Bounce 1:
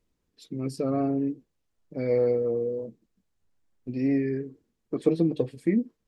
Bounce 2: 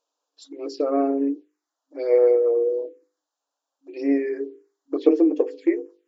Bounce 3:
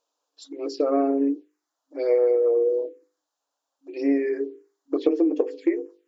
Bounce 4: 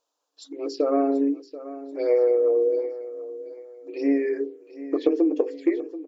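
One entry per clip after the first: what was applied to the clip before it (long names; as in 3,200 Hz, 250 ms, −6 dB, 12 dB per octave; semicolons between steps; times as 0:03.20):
phaser swept by the level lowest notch 350 Hz, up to 3,900 Hz, full sweep at −23.5 dBFS; brick-wall band-pass 270–7,500 Hz; mains-hum notches 50/100/150/200/250/300/350/400/450/500 Hz; level +7.5 dB
downward compressor, threshold −18 dBFS, peak gain reduction 8 dB; level +1.5 dB
repeating echo 734 ms, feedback 33%, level −15 dB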